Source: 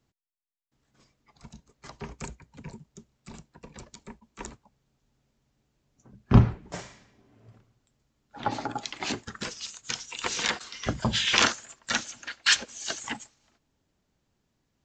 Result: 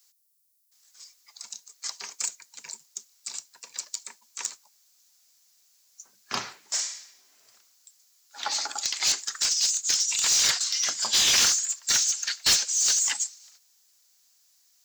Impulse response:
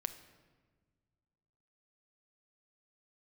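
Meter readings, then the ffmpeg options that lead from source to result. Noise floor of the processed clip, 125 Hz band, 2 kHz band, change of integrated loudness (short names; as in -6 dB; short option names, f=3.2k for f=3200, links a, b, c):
-64 dBFS, under -25 dB, -2.5 dB, +4.0 dB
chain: -filter_complex "[0:a]aexciter=amount=3.4:drive=5:freq=4.3k,aderivative,asplit=2[a][b];[b]highpass=f=720:p=1,volume=31dB,asoftclip=type=tanh:threshold=-1.5dB[c];[a][c]amix=inputs=2:normalize=0,lowpass=f=4.6k:p=1,volume=-6dB,volume=-8dB"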